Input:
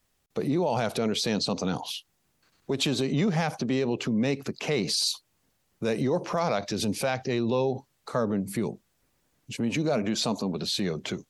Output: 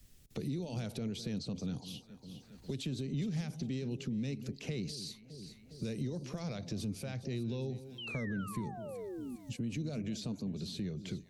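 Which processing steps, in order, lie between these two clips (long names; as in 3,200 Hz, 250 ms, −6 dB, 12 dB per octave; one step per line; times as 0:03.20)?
guitar amp tone stack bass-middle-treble 10-0-1
sound drawn into the spectrogram fall, 0:07.98–0:09.36, 230–3,200 Hz −56 dBFS
delay that swaps between a low-pass and a high-pass 204 ms, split 820 Hz, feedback 57%, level −14 dB
multiband upward and downward compressor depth 70%
level +7.5 dB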